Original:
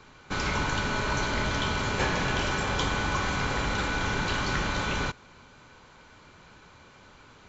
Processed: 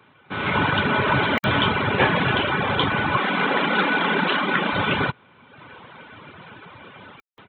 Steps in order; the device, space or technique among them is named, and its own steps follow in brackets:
call with lost packets (high-pass filter 100 Hz 24 dB per octave; downsampling to 8,000 Hz; automatic gain control gain up to 15 dB; dropped packets of 60 ms bursts)
reverb reduction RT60 1.1 s
0:03.17–0:04.73: Butterworth high-pass 170 Hz 48 dB per octave
level −1.5 dB

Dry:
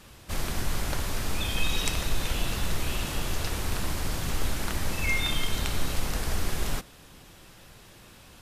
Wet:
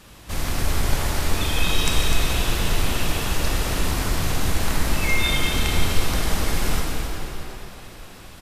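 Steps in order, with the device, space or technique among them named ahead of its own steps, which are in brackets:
cave (single-tap delay 252 ms −8.5 dB; convolution reverb RT60 4.0 s, pre-delay 33 ms, DRR −1.5 dB)
level +3 dB

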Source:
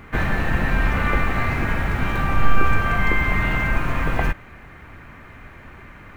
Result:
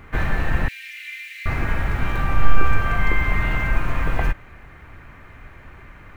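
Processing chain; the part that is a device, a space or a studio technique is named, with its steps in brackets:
low shelf boost with a cut just above (low-shelf EQ 66 Hz +6 dB; parametric band 220 Hz −3.5 dB 0.64 octaves)
0:00.68–0:01.46: Butterworth high-pass 2,100 Hz 48 dB per octave
level −2.5 dB

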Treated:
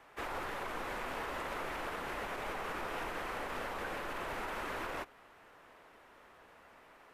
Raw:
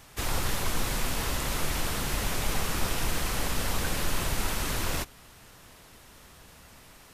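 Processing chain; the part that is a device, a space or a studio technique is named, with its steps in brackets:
DJ mixer with the lows and highs turned down (three-way crossover with the lows and the highs turned down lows −18 dB, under 310 Hz, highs −20 dB, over 2,400 Hz; brickwall limiter −29 dBFS, peak gain reduction 5 dB)
level −1.5 dB

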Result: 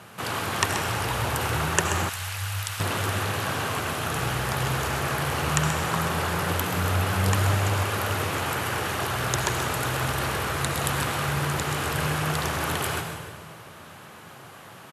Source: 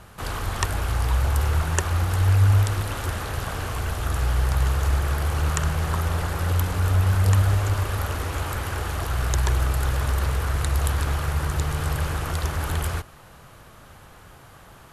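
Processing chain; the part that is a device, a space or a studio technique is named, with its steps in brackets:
PA in a hall (high-pass filter 120 Hz 24 dB per octave; parametric band 2,600 Hz +3.5 dB 0.77 octaves; single-tap delay 131 ms −10 dB; convolution reverb RT60 1.9 s, pre-delay 65 ms, DRR 6 dB)
0:02.09–0:02.80: guitar amp tone stack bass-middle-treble 10-0-10
level +2 dB

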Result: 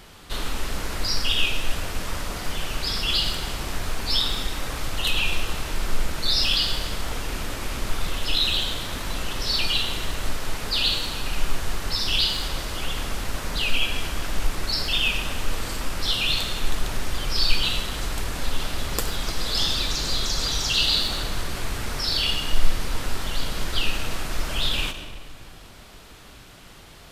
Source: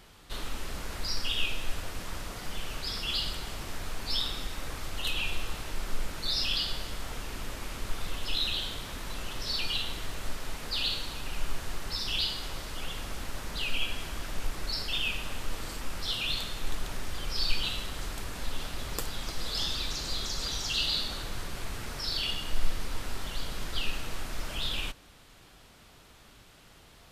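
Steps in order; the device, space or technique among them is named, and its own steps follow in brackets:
saturated reverb return (on a send at −6 dB: convolution reverb RT60 1.6 s, pre-delay 78 ms + soft clipping −31.5 dBFS, distortion −7 dB)
on the sum: level +8 dB

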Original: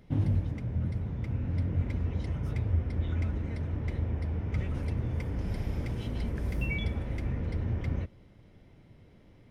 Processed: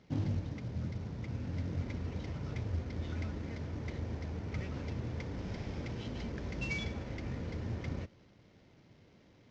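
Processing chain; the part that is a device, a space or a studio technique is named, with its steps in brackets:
early wireless headset (high-pass filter 150 Hz 6 dB per octave; variable-slope delta modulation 32 kbit/s)
level −2 dB

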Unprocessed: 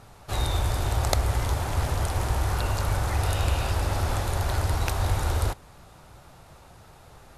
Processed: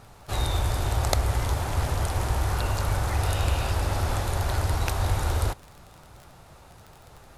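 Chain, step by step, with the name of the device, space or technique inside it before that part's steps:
vinyl LP (surface crackle 26 per second −35 dBFS; pink noise bed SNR 44 dB)

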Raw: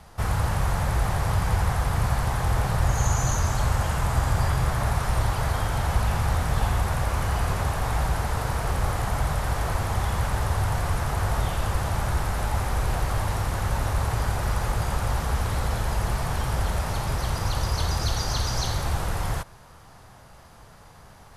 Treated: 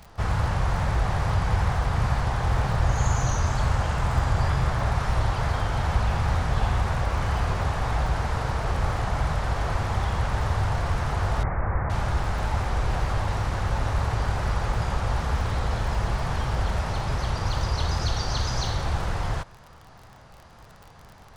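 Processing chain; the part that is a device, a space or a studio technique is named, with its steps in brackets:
lo-fi chain (low-pass filter 5,700 Hz 12 dB per octave; tape wow and flutter; surface crackle 38 per second −37 dBFS)
0:11.43–0:11.90: Butterworth low-pass 2,200 Hz 72 dB per octave

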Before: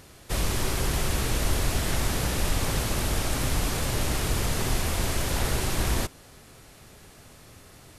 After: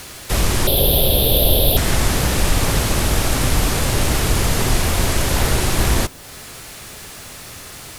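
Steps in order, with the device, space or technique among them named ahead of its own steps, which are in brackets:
noise-reduction cassette on a plain deck (one half of a high-frequency compander encoder only; tape wow and flutter; white noise bed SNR 28 dB)
0:00.67–0:01.77: drawn EQ curve 350 Hz 0 dB, 560 Hz +10 dB, 1,200 Hz −15 dB, 2,100 Hz −15 dB, 3,500 Hz +12 dB, 7,100 Hz −23 dB, 12,000 Hz +14 dB
level +9 dB

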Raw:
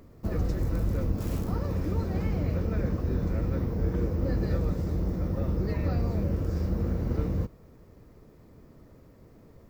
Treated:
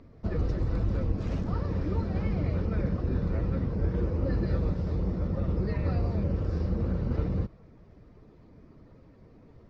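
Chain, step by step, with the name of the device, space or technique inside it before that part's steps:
clip after many re-uploads (low-pass filter 5,000 Hz 24 dB per octave; spectral magnitudes quantised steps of 15 dB)

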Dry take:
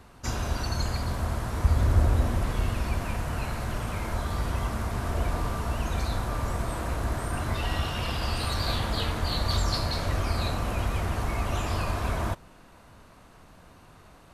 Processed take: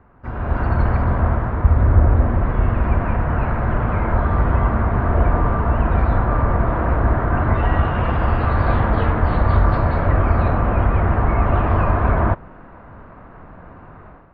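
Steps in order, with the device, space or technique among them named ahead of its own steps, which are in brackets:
action camera in a waterproof case (low-pass filter 1,800 Hz 24 dB per octave; automatic gain control gain up to 12.5 dB; AAC 64 kbit/s 48,000 Hz)

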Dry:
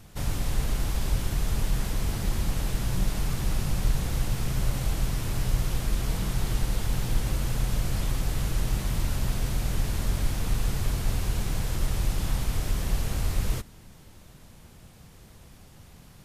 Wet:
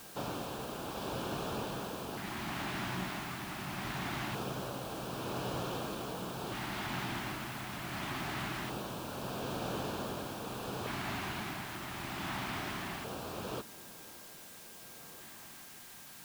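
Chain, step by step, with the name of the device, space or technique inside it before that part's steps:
shortwave radio (band-pass filter 310–2,700 Hz; amplitude tremolo 0.72 Hz, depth 42%; auto-filter notch square 0.23 Hz 490–2,000 Hz; steady tone 1,600 Hz −68 dBFS; white noise bed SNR 12 dB)
level +4.5 dB

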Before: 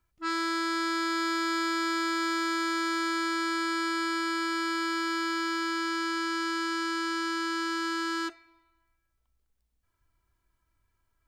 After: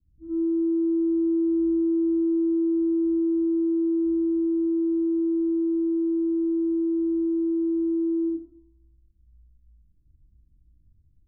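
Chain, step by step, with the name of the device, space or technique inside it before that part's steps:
next room (low-pass filter 250 Hz 24 dB per octave; convolution reverb RT60 0.50 s, pre-delay 39 ms, DRR −8.5 dB)
level +7.5 dB

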